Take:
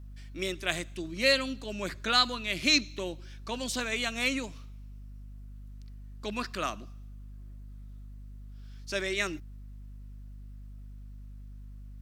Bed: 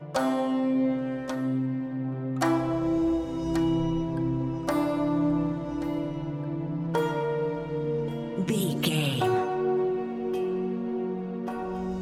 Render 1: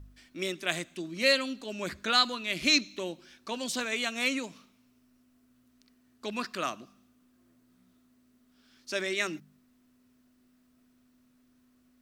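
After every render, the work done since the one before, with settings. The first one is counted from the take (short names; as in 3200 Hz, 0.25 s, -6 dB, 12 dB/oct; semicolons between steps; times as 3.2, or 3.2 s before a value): de-hum 50 Hz, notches 4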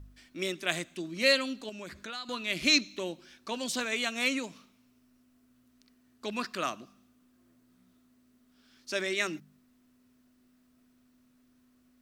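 1.69–2.29 compressor 3:1, threshold -41 dBFS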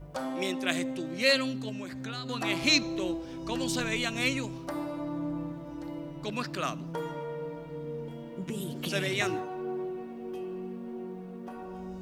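add bed -9 dB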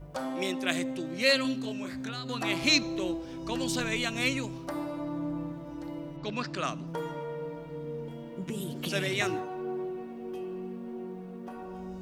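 1.42–2.09 doubler 26 ms -3 dB; 6.16–6.86 LPF 5200 Hz -> 12000 Hz 24 dB/oct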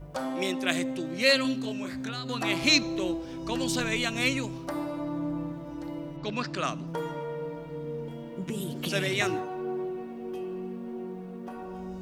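gain +2 dB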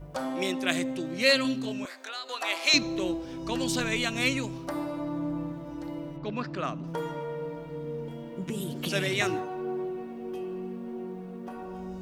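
1.85–2.74 HPF 500 Hz 24 dB/oct; 6.18–6.84 bell 11000 Hz -14 dB 2.8 oct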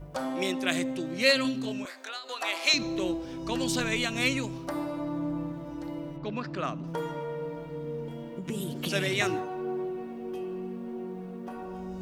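reverse; upward compressor, threshold -36 dBFS; reverse; ending taper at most 130 dB/s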